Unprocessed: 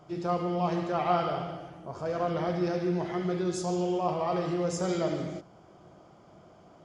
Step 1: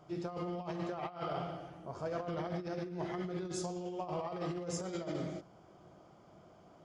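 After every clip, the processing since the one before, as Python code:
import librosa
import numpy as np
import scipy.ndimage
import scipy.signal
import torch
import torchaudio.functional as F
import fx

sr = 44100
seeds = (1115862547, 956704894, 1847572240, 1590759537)

y = fx.over_compress(x, sr, threshold_db=-31.0, ratio=-0.5)
y = F.gain(torch.from_numpy(y), -7.0).numpy()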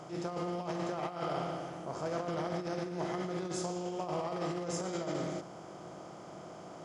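y = fx.bin_compress(x, sr, power=0.6)
y = fx.low_shelf(y, sr, hz=76.0, db=-9.0)
y = fx.attack_slew(y, sr, db_per_s=180.0)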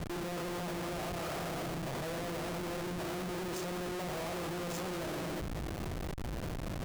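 y = fx.schmitt(x, sr, flips_db=-43.0)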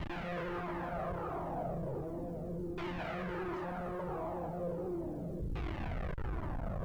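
y = fx.filter_lfo_lowpass(x, sr, shape='saw_down', hz=0.36, low_hz=300.0, high_hz=2900.0, q=1.3)
y = fx.quant_companded(y, sr, bits=8)
y = fx.comb_cascade(y, sr, direction='falling', hz=1.4)
y = F.gain(torch.from_numpy(y), 3.5).numpy()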